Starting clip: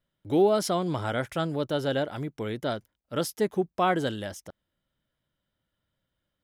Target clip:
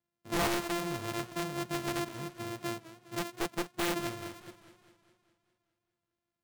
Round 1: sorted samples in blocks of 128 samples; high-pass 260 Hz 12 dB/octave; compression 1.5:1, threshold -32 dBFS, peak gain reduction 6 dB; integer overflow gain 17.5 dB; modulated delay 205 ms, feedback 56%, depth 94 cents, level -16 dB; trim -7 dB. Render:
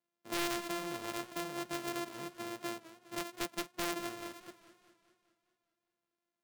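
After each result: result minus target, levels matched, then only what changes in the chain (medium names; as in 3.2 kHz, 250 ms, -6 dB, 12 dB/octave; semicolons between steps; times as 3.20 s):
125 Hz band -8.0 dB; compression: peak gain reduction +6 dB
change: high-pass 99 Hz 12 dB/octave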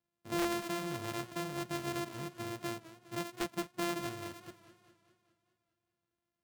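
compression: peak gain reduction +6 dB
remove: compression 1.5:1, threshold -32 dBFS, peak gain reduction 6 dB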